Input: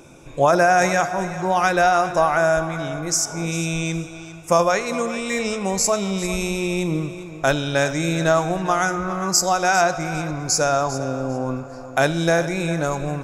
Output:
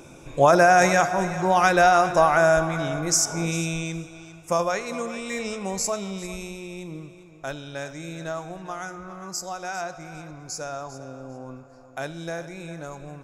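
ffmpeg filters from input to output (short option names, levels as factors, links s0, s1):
-af "afade=t=out:st=3.35:d=0.54:silence=0.473151,afade=t=out:st=5.81:d=0.83:silence=0.421697"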